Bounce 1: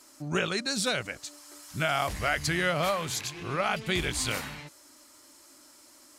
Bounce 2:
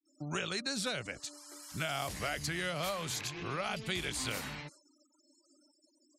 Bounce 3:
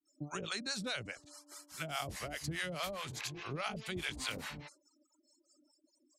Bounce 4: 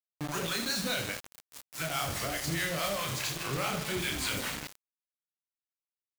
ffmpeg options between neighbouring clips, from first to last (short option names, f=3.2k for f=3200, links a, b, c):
-filter_complex "[0:a]agate=range=-33dB:threshold=-50dB:ratio=3:detection=peak,afftfilt=real='re*gte(hypot(re,im),0.00224)':imag='im*gte(hypot(re,im),0.00224)':win_size=1024:overlap=0.75,acrossover=split=110|630|3200[a][b][c][d];[a]acompressor=threshold=-51dB:ratio=4[e];[b]acompressor=threshold=-39dB:ratio=4[f];[c]acompressor=threshold=-38dB:ratio=4[g];[d]acompressor=threshold=-37dB:ratio=4[h];[e][f][g][h]amix=inputs=4:normalize=0,volume=-1dB"
-filter_complex "[0:a]acrossover=split=590[a][b];[a]aeval=exprs='val(0)*(1-1/2+1/2*cos(2*PI*4.8*n/s))':c=same[c];[b]aeval=exprs='val(0)*(1-1/2-1/2*cos(2*PI*4.8*n/s))':c=same[d];[c][d]amix=inputs=2:normalize=0,volume=1.5dB"
-af "asoftclip=type=tanh:threshold=-32dB,aecho=1:1:30|78|154.8|277.7|474.3:0.631|0.398|0.251|0.158|0.1,acrusher=bits=6:mix=0:aa=0.000001,volume=6dB"